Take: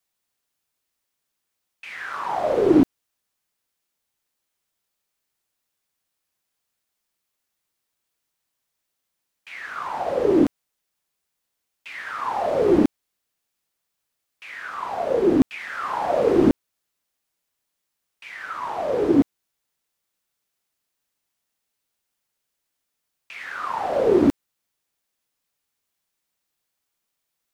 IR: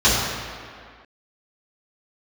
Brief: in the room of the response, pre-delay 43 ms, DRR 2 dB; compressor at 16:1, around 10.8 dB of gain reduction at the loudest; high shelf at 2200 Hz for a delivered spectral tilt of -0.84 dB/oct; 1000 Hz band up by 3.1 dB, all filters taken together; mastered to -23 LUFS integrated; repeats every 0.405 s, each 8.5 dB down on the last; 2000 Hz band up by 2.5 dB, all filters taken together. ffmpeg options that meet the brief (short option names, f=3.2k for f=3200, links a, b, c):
-filter_complex "[0:a]equalizer=f=1k:t=o:g=4.5,equalizer=f=2k:t=o:g=6,highshelf=f=2.2k:g=-9,acompressor=threshold=-22dB:ratio=16,aecho=1:1:405|810|1215|1620:0.376|0.143|0.0543|0.0206,asplit=2[a][b];[1:a]atrim=start_sample=2205,adelay=43[c];[b][c]afir=irnorm=-1:irlink=0,volume=-25dB[d];[a][d]amix=inputs=2:normalize=0,volume=3.5dB"